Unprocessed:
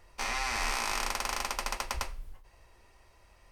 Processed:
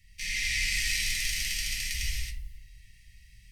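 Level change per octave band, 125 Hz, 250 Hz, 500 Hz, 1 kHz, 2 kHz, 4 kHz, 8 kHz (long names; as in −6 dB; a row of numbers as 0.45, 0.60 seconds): +6.5 dB, −7.0 dB, below −40 dB, below −30 dB, +4.5 dB, +6.5 dB, +5.5 dB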